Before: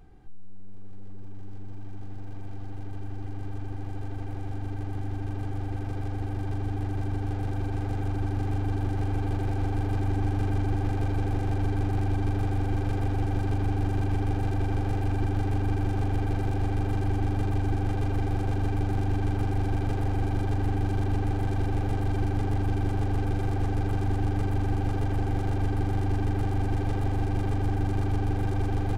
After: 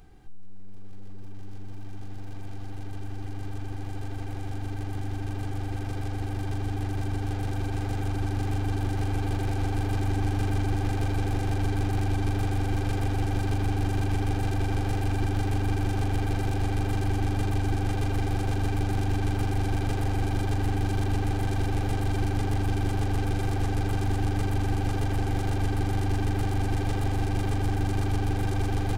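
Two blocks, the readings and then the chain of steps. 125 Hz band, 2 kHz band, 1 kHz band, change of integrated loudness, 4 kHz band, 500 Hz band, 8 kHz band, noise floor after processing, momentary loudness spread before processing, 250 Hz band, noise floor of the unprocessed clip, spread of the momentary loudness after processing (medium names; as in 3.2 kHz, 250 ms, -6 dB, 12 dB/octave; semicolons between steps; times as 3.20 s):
0.0 dB, +3.5 dB, +1.0 dB, +0.5 dB, +7.0 dB, +0.5 dB, no reading, -33 dBFS, 9 LU, 0.0 dB, -33 dBFS, 9 LU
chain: treble shelf 2.2 kHz +9.5 dB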